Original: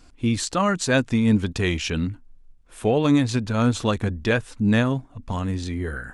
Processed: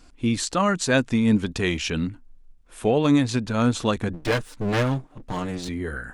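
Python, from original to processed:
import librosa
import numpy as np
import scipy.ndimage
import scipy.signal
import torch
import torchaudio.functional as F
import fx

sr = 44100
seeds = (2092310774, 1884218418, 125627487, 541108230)

y = fx.lower_of_two(x, sr, delay_ms=6.6, at=(4.13, 5.69))
y = fx.peak_eq(y, sr, hz=93.0, db=-6.5, octaves=0.56)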